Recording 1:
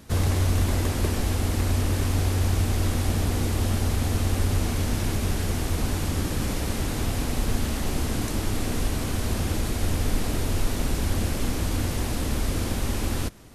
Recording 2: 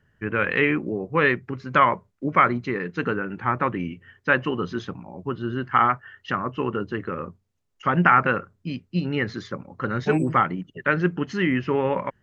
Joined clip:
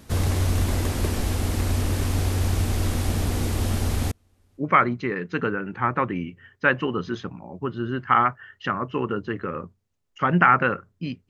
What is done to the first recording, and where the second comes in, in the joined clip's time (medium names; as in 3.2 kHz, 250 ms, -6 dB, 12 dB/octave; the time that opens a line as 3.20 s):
recording 1
4.11–4.64 s: inverted gate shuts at -23 dBFS, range -39 dB
4.60 s: go over to recording 2 from 2.24 s, crossfade 0.08 s